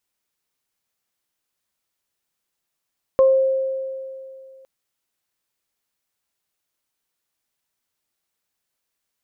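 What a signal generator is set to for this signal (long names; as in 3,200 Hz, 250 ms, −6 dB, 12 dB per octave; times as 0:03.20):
harmonic partials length 1.46 s, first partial 531 Hz, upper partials −13.5 dB, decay 2.49 s, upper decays 0.32 s, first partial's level −9.5 dB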